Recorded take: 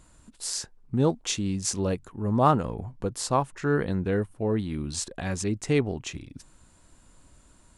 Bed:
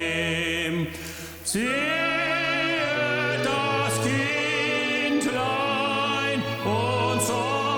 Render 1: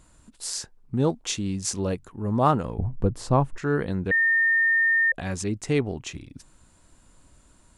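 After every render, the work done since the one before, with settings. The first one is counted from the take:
0:02.78–0:03.58: spectral tilt −3 dB per octave
0:04.11–0:05.12: beep over 1,820 Hz −17.5 dBFS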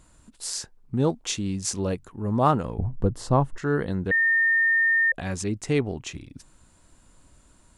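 0:02.90–0:04.26: notch filter 2,400 Hz, Q 7.7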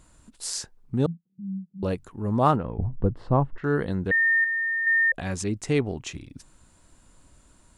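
0:01.06–0:01.83: flat-topped band-pass 180 Hz, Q 5.4
0:02.56–0:03.64: high-frequency loss of the air 420 metres
0:04.44–0:04.87: formant filter e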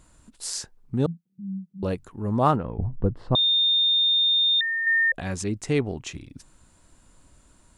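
0:03.35–0:04.61: beep over 3,640 Hz −17.5 dBFS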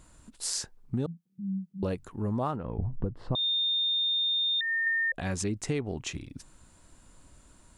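downward compressor 12 to 1, threshold −26 dBFS, peak gain reduction 12.5 dB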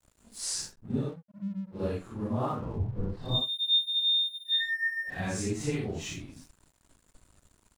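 random phases in long frames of 200 ms
dead-zone distortion −55 dBFS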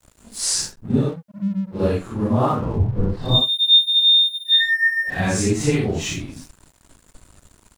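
level +12 dB

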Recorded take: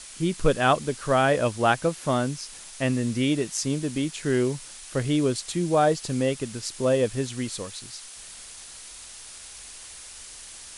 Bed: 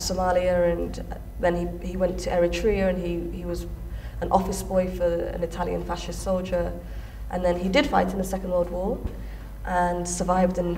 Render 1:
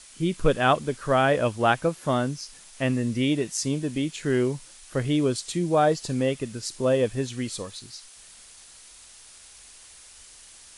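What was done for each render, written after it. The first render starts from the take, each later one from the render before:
noise reduction from a noise print 6 dB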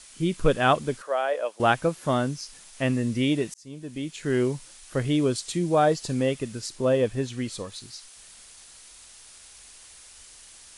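0:01.02–0:01.60: four-pole ladder high-pass 440 Hz, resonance 40%
0:03.54–0:04.43: fade in
0:06.66–0:07.72: high-shelf EQ 4,500 Hz −5 dB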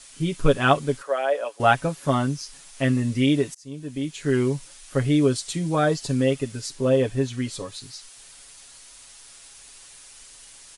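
comb filter 7.2 ms, depth 74%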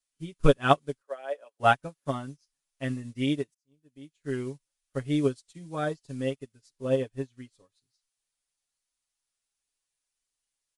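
expander for the loud parts 2.5 to 1, over −39 dBFS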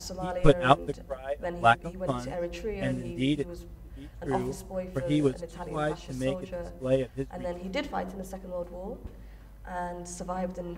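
mix in bed −11.5 dB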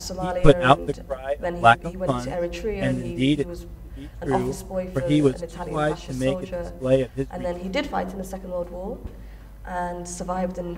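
level +6.5 dB
brickwall limiter −1 dBFS, peak gain reduction 2.5 dB

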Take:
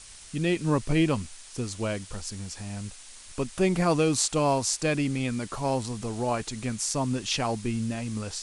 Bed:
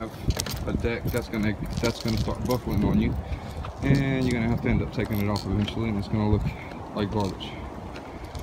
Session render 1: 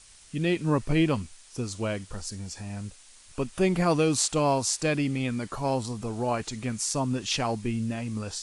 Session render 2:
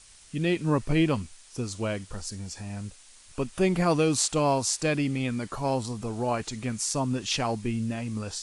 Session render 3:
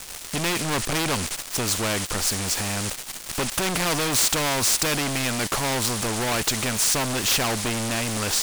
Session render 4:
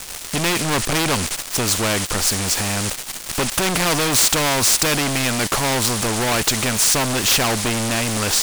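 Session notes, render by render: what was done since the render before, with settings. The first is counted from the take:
noise reduction from a noise print 6 dB
no processing that can be heard
leveller curve on the samples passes 5; every bin compressed towards the loudest bin 2 to 1
level +5 dB

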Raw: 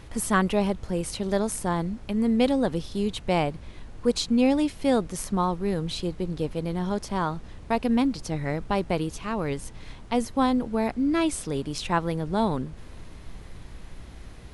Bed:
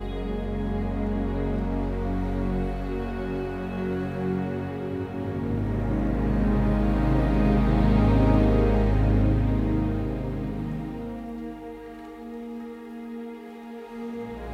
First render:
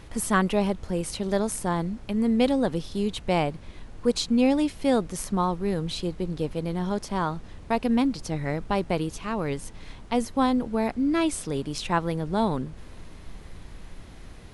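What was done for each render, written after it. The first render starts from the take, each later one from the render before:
hum removal 60 Hz, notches 2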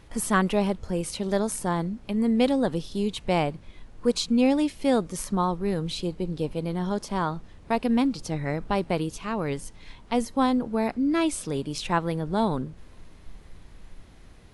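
noise reduction from a noise print 6 dB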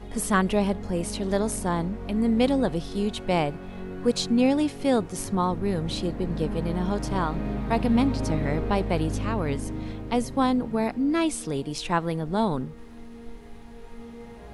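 mix in bed −8.5 dB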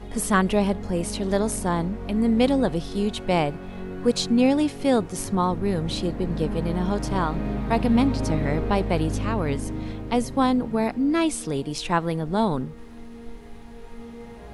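level +2 dB

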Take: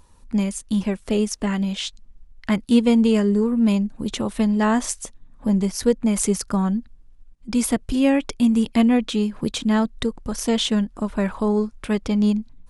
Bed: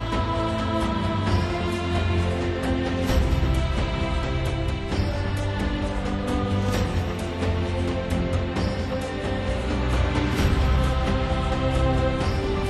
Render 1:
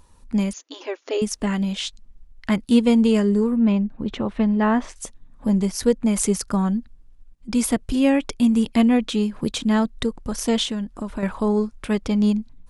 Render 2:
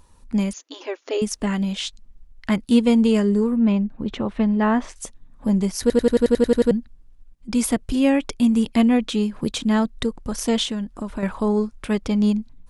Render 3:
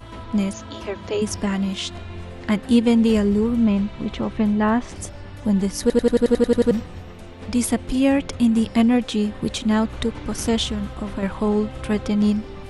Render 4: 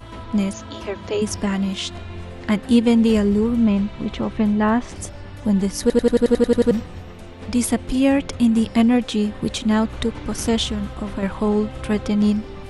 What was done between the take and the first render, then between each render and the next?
0:00.53–0:01.22: linear-phase brick-wall band-pass 270–7,100 Hz; 0:03.56–0:04.96: low-pass filter 2,600 Hz; 0:10.63–0:11.23: downward compressor 5 to 1, threshold −23 dBFS
0:05.81: stutter in place 0.09 s, 10 plays
mix in bed −12 dB
level +1 dB

